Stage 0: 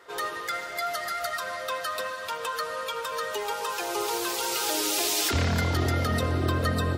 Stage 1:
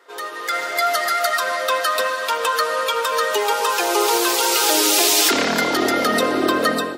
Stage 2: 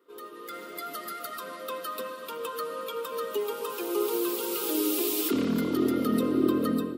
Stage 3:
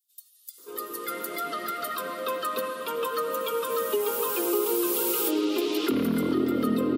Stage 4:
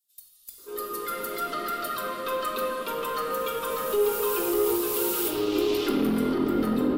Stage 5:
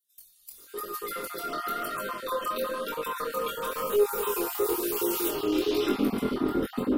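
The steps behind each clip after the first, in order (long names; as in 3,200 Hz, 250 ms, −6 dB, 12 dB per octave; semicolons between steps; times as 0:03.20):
high-pass filter 240 Hz 24 dB per octave; automatic gain control gain up to 11.5 dB
drawn EQ curve 250 Hz 0 dB, 460 Hz −8 dB, 750 Hz −26 dB, 1,200 Hz −13 dB, 1,700 Hz −25 dB, 2,900 Hz −16 dB, 6,200 Hz −23 dB, 15,000 Hz −6 dB
multiband delay without the direct sound highs, lows 580 ms, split 5,200 Hz; downward compressor 3 to 1, threshold −29 dBFS, peak gain reduction 8 dB; level +6 dB
tube saturation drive 22 dB, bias 0.3; rectangular room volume 700 cubic metres, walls mixed, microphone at 1.2 metres
time-frequency cells dropped at random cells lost 27%; chorus effect 1 Hz, delay 19.5 ms, depth 6.4 ms; level +2.5 dB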